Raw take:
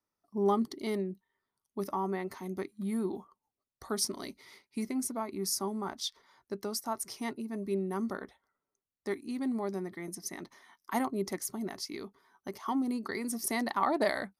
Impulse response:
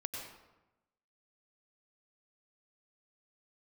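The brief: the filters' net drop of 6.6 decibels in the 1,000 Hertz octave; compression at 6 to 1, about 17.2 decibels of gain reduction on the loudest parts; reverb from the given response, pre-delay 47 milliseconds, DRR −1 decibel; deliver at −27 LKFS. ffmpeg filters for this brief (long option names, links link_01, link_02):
-filter_complex "[0:a]equalizer=frequency=1000:width_type=o:gain=-8.5,acompressor=threshold=-45dB:ratio=6,asplit=2[link_01][link_02];[1:a]atrim=start_sample=2205,adelay=47[link_03];[link_02][link_03]afir=irnorm=-1:irlink=0,volume=0.5dB[link_04];[link_01][link_04]amix=inputs=2:normalize=0,volume=18.5dB"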